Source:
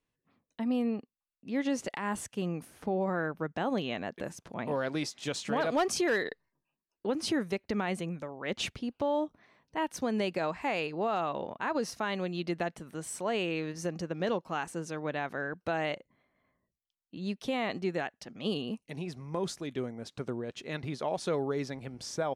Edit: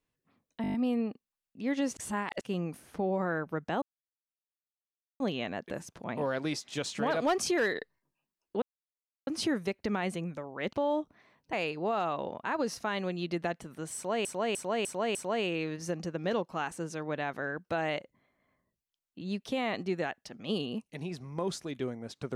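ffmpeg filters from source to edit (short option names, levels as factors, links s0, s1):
-filter_complex "[0:a]asplit=17[s0][s1][s2][s3][s4][s5][s6][s7][s8][s9][s10][s11][s12][s13][s14][s15][s16];[s0]atrim=end=0.642[s17];[s1]atrim=start=0.618:end=0.642[s18];[s2]atrim=start=0.618:end=0.642[s19];[s3]atrim=start=0.618:end=0.642[s20];[s4]atrim=start=0.618:end=0.642[s21];[s5]atrim=start=0.618:end=0.642[s22];[s6]atrim=start=0.618:end=1.852[s23];[s7]atrim=start=1.848:end=2.292,asetpts=PTS-STARTPTS,areverse[s24];[s8]atrim=start=2.288:end=3.7,asetpts=PTS-STARTPTS,afade=t=out:st=1.408:d=0.004:c=hsin,apad=pad_dur=1.38[s25];[s9]atrim=start=3.7:end=7.12,asetpts=PTS-STARTPTS,afade=t=in:d=0.004:c=hsin,afade=t=out:st=3.416:d=0.004:c=hsin,apad=pad_dur=0.65[s26];[s10]atrim=start=7.12:end=8.582,asetpts=PTS-STARTPTS,afade=t=in:d=0.004:c=hsin[s27];[s11]atrim=start=8.968:end=9.772[s28];[s12]atrim=start=10.688:end=13.412[s29];[s13]atrim=start=13.108:end=13.412[s30];[s14]atrim=start=13.108:end=13.412[s31];[s15]atrim=start=13.108:end=13.412[s32];[s16]atrim=start=13.108[s33];[s17][s18]acrossfade=d=0.004:c1=hsin:c2=hsin[s34];[s34][s19]acrossfade=d=0.004:c1=hsin:c2=hsin[s35];[s35][s20]acrossfade=d=0.004:c1=hsin:c2=hsin[s36];[s36][s21]acrossfade=d=0.004:c1=hsin:c2=hsin[s37];[s37][s22]acrossfade=d=0.004:c1=hsin:c2=hsin[s38];[s38][s23]acrossfade=d=0.004:c1=hsin:c2=hsin[s39];[s39][s24]acrossfade=d=0.004:c1=hsin:c2=hsin[s40];[s25][s26][s27]concat=n=3:v=0:a=1[s41];[s40][s41]acrossfade=d=0.004:c1=hsin:c2=hsin[s42];[s42][s28]acrossfade=d=0.004:c1=hsin:c2=hsin[s43];[s43][s29]acrossfade=d=0.004:c1=hsin:c2=hsin[s44];[s44][s30]acrossfade=d=0.004:c1=hsin:c2=hsin[s45];[s45][s31]acrossfade=d=0.004:c1=hsin:c2=hsin[s46];[s46][s32]acrossfade=d=0.004:c1=hsin:c2=hsin[s47];[s47][s33]acrossfade=d=0.004:c1=hsin:c2=hsin"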